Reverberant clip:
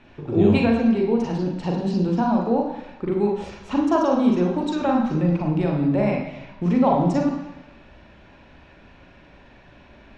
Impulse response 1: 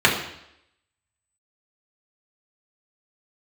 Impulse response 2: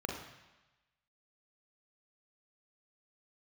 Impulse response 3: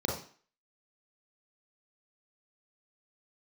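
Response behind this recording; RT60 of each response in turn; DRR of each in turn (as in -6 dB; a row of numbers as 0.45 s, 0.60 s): 2; 0.75 s, 1.1 s, 0.45 s; -4.0 dB, -0.5 dB, -2.0 dB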